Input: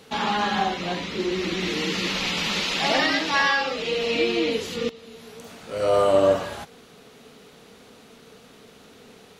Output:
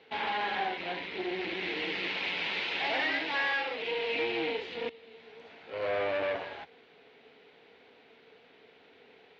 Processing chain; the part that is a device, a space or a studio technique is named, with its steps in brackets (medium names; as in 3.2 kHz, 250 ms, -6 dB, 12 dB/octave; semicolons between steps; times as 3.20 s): guitar amplifier (valve stage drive 24 dB, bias 0.8; tone controls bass -14 dB, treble -10 dB; cabinet simulation 78–4200 Hz, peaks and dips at 80 Hz +6 dB, 210 Hz -6 dB, 580 Hz -4 dB, 1.2 kHz -10 dB, 2.2 kHz +4 dB)